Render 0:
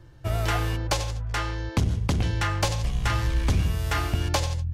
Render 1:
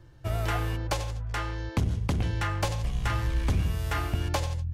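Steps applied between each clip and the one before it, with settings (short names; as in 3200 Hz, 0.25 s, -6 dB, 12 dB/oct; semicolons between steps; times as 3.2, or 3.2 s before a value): dynamic EQ 5300 Hz, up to -5 dB, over -43 dBFS, Q 0.77; gain -3 dB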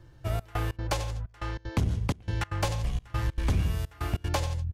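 step gate "xxxxx..xx.x" 191 bpm -24 dB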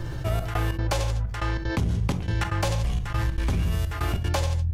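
on a send at -12.5 dB: reverb RT60 0.25 s, pre-delay 5 ms; on the sum: fast leveller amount 70%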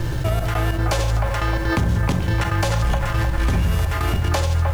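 band-limited delay 0.307 s, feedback 59%, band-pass 1000 Hz, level -4 dB; in parallel at -3.5 dB: bit-crush 7-bit; on the sum: limiter -15.5 dBFS, peak gain reduction 6.5 dB; gain +4 dB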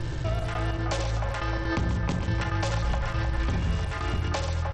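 echo 0.139 s -10 dB; gain -7.5 dB; SBC 64 kbps 32000 Hz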